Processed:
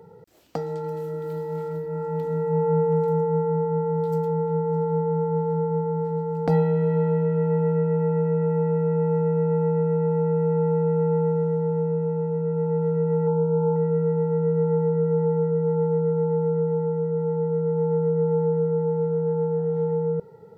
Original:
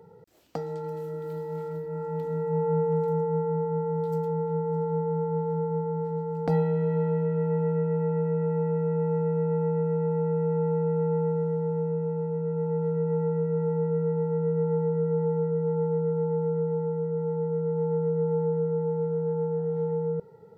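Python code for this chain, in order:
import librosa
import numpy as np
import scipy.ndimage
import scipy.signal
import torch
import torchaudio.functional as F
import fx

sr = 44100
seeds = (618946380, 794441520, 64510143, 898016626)

y = fx.high_shelf_res(x, sr, hz=1500.0, db=-12.0, q=3.0, at=(13.27, 13.76))
y = y * 10.0 ** (4.0 / 20.0)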